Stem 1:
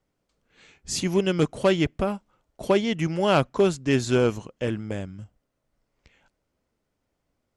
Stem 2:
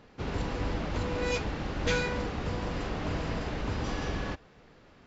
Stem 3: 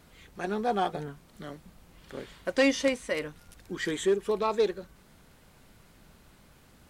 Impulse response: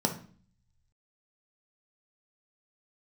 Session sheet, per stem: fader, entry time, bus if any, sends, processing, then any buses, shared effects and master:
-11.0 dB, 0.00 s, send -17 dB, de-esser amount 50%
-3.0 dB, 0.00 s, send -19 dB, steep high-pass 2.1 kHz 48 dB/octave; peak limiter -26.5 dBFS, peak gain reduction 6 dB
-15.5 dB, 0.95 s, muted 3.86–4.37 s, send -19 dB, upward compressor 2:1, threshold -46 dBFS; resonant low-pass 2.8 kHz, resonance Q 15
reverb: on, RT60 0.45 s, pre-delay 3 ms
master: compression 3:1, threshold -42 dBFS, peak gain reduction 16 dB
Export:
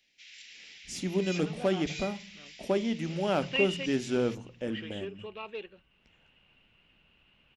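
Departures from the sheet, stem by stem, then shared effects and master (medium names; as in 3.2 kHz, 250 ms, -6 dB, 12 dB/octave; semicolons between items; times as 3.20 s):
stem 3: send off; master: missing compression 3:1, threshold -42 dBFS, peak gain reduction 16 dB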